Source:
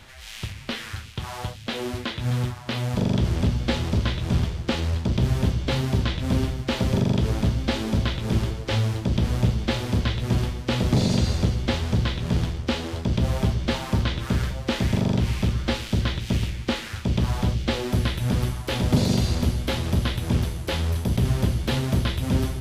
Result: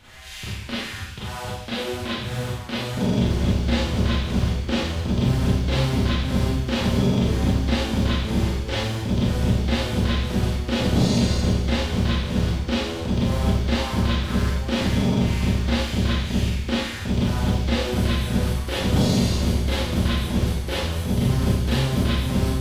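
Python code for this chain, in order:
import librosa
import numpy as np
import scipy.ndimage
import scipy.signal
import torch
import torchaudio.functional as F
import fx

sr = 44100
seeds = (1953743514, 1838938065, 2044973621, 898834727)

y = fx.quant_float(x, sr, bits=6)
y = fx.rev_schroeder(y, sr, rt60_s=0.65, comb_ms=30, drr_db=-8.0)
y = y * 10.0 ** (-6.0 / 20.0)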